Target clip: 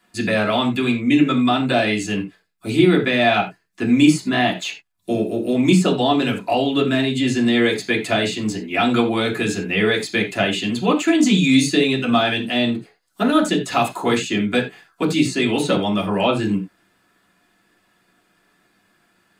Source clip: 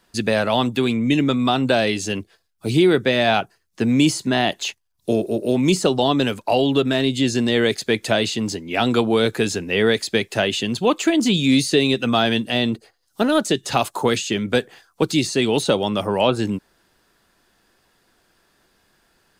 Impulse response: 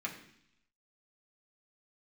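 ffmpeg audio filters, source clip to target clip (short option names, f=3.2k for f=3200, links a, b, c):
-filter_complex "[0:a]asettb=1/sr,asplit=3[a][b][c];[a]atrim=end=11.084[d];[b]atrim=start=11.08:end=11.67,asetpts=PTS-STARTPTS,afade=t=in:d=0.004:c=qsin,afade=t=out:st=0.586:d=0.004:c=qsin,equalizer=f=6.7k:t=o:w=0.77:g=6.5[e];[c]atrim=start=11.666[f];[d][e]acrossfade=d=0.004:c1=hsin:c2=qsin[g];[g][f]acrossfade=d=0.004:c1=qsin:c2=hsin[h];[1:a]atrim=start_sample=2205,atrim=end_sample=4410[i];[h][i]afir=irnorm=-1:irlink=0"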